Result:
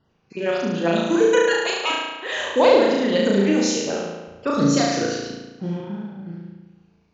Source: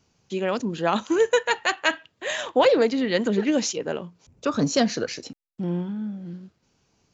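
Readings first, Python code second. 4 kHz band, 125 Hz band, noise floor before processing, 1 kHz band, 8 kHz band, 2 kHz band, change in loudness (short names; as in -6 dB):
+3.5 dB, +4.0 dB, -70 dBFS, +2.5 dB, n/a, +2.0 dB, +4.0 dB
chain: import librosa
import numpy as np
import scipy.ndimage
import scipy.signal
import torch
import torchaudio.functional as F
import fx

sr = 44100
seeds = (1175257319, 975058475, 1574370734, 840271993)

y = fx.spec_dropout(x, sr, seeds[0], share_pct=22)
y = fx.room_flutter(y, sr, wall_m=6.1, rt60_s=1.2)
y = fx.env_lowpass(y, sr, base_hz=2600.0, full_db=-15.0)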